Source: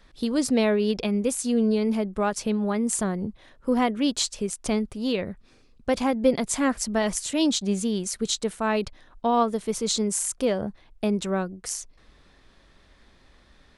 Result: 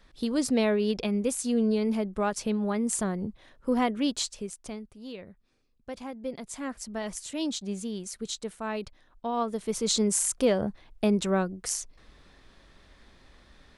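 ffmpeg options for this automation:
-af "volume=12.5dB,afade=t=out:st=4:d=0.77:silence=0.251189,afade=t=in:st=6.25:d=1.07:silence=0.473151,afade=t=in:st=9.34:d=0.72:silence=0.354813"

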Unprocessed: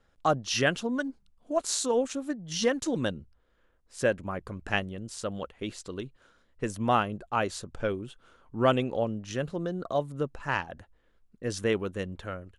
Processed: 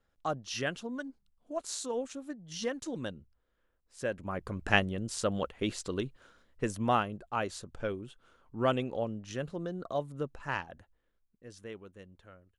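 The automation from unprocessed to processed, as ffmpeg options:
-af "volume=3dB,afade=t=in:st=4.08:d=0.61:silence=0.266073,afade=t=out:st=6.01:d=1.11:silence=0.398107,afade=t=out:st=10.5:d=0.96:silence=0.237137"

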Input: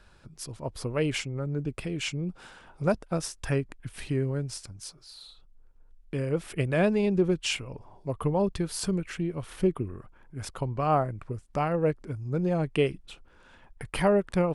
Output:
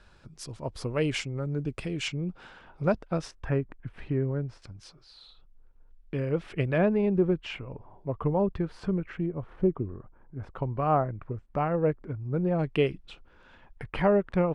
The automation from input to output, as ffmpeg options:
-af "asetnsamples=n=441:p=0,asendcmd='2.08 lowpass f 3900;3.31 lowpass f 1700;4.62 lowpass f 3500;6.78 lowpass f 1800;9.26 lowpass f 1100;10.55 lowpass f 2000;12.59 lowpass f 4500;13.84 lowpass f 2500',lowpass=7.7k"

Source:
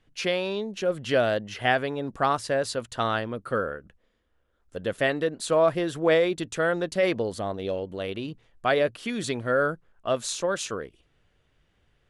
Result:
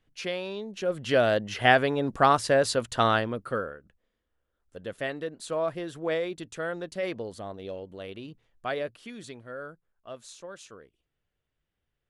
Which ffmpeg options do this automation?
-af "volume=3.5dB,afade=t=in:st=0.61:d=1.1:silence=0.334965,afade=t=out:st=3.08:d=0.66:silence=0.266073,afade=t=out:st=8.67:d=0.79:silence=0.398107"

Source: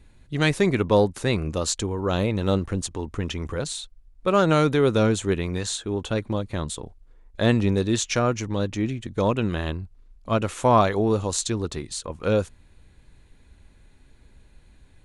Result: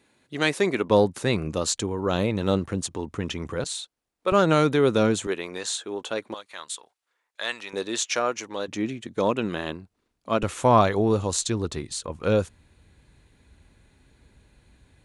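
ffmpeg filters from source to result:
-af "asetnsamples=n=441:p=0,asendcmd='0.9 highpass f 110;3.64 highpass f 370;4.32 highpass f 140;5.27 highpass f 410;6.34 highpass f 1200;7.73 highpass f 470;8.68 highpass f 210;10.43 highpass f 55',highpass=280"

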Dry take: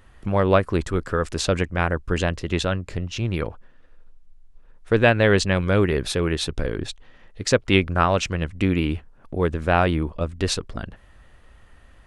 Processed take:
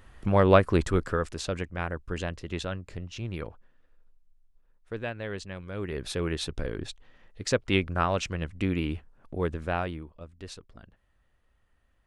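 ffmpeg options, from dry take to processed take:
-af "volume=10.5dB,afade=t=out:st=0.94:d=0.43:silence=0.354813,afade=t=out:st=3.42:d=1.71:silence=0.375837,afade=t=in:st=5.73:d=0.48:silence=0.266073,afade=t=out:st=9.48:d=0.59:silence=0.251189"

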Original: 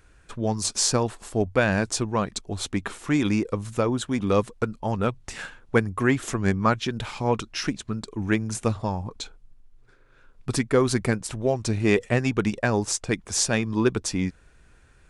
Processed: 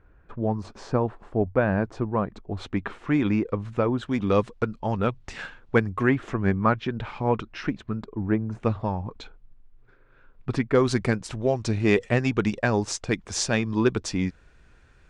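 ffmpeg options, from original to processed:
-af "asetnsamples=n=441:p=0,asendcmd='2.57 lowpass f 2400;4.03 lowpass f 4400;6.09 lowpass f 2200;8.04 lowpass f 1100;8.6 lowpass f 2600;10.75 lowpass f 5700',lowpass=1.3k"

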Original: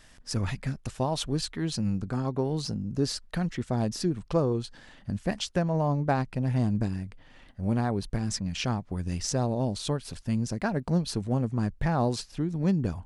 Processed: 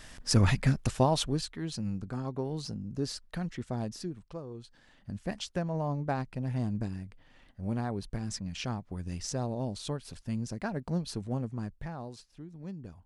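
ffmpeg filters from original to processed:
-af "volume=18dB,afade=t=out:st=0.81:d=0.67:silence=0.251189,afade=t=out:st=3.71:d=0.72:silence=0.251189,afade=t=in:st=4.43:d=0.88:silence=0.251189,afade=t=out:st=11.35:d=0.68:silence=0.298538"

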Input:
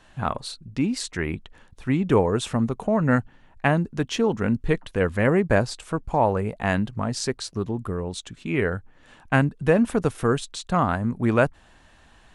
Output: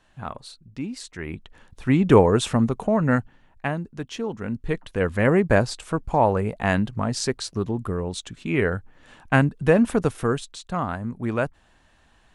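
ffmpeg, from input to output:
-af "volume=13.5dB,afade=t=in:st=1.18:d=0.94:silence=0.237137,afade=t=out:st=2.12:d=1.64:silence=0.251189,afade=t=in:st=4.45:d=0.89:silence=0.375837,afade=t=out:st=9.94:d=0.65:silence=0.473151"

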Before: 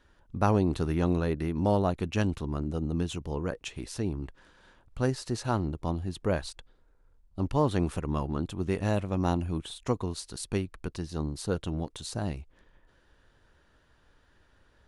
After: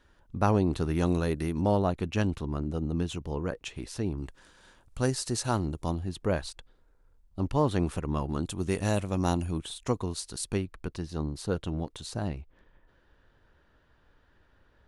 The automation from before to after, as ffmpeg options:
-af "asetnsamples=n=441:p=0,asendcmd='0.95 equalizer g 10.5;1.61 equalizer g -1.5;4.18 equalizer g 10.5;5.95 equalizer g 0.5;8.29 equalizer g 11.5;9.51 equalizer g 4;10.54 equalizer g -3;12.28 equalizer g -11',equalizer=f=9.1k:t=o:w=1.7:g=0.5"

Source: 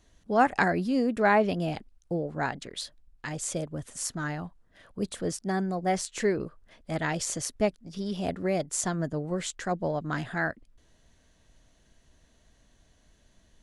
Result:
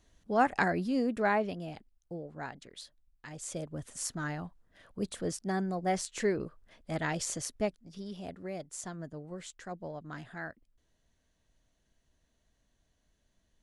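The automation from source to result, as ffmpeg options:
-af "volume=3.5dB,afade=t=out:st=1.1:d=0.52:silence=0.446684,afade=t=in:st=3.29:d=0.55:silence=0.421697,afade=t=out:st=7.24:d=1.05:silence=0.375837"

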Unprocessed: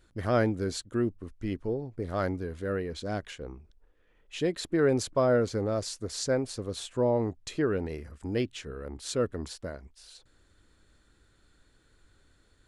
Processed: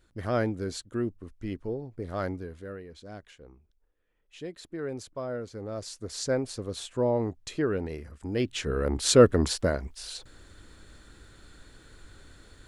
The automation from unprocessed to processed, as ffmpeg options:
-af "volume=20.5dB,afade=t=out:st=2.32:d=0.45:silence=0.375837,afade=t=in:st=5.53:d=0.77:silence=0.298538,afade=t=in:st=8.38:d=0.41:silence=0.251189"

